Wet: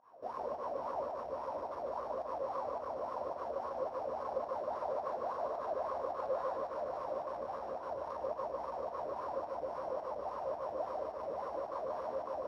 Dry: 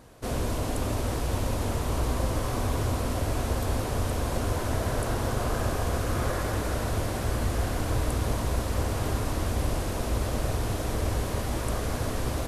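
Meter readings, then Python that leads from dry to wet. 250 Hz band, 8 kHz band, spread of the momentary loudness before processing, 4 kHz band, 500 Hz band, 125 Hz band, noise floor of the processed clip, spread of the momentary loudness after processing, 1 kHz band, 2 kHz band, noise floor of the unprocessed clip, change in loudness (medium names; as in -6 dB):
-21.0 dB, under -35 dB, 2 LU, under -20 dB, -4.5 dB, -34.0 dB, -45 dBFS, 3 LU, -4.0 dB, -18.5 dB, -31 dBFS, -10.0 dB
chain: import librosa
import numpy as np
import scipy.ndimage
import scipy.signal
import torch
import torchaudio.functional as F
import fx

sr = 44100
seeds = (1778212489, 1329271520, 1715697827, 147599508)

y = np.r_[np.sort(x[:len(x) // 8 * 8].reshape(-1, 8), axis=1).ravel(), x[len(x) // 8 * 8:]]
y = scipy.signal.sosfilt(scipy.signal.butter(2, 43.0, 'highpass', fs=sr, output='sos'), y)
y = fx.peak_eq(y, sr, hz=97.0, db=-6.5, octaves=0.3)
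y = np.clip(y, -10.0 ** (-30.5 / 20.0), 10.0 ** (-30.5 / 20.0))
y = fx.wah_lfo(y, sr, hz=3.6, low_hz=530.0, high_hz=1100.0, q=9.7)
y = fx.volume_shaper(y, sr, bpm=108, per_beat=1, depth_db=-18, release_ms=112.0, shape='fast start')
y = fx.doubler(y, sr, ms=13.0, db=-12.0)
y = y + 10.0 ** (-4.0 / 20.0) * np.pad(y, (int(148 * sr / 1000.0), 0))[:len(y)]
y = y * librosa.db_to_amplitude(7.5)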